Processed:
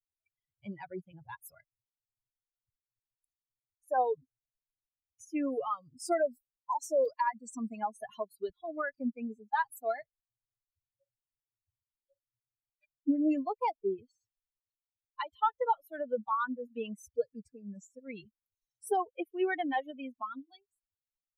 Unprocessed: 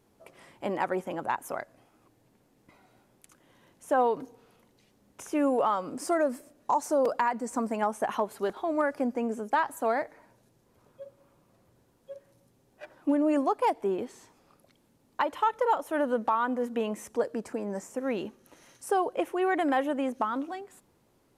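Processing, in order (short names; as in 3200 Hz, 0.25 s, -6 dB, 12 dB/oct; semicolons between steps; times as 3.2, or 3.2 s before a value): per-bin expansion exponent 3; 1.59–3.98 bell 3500 Hz -13 dB 1.1 oct; gain +1.5 dB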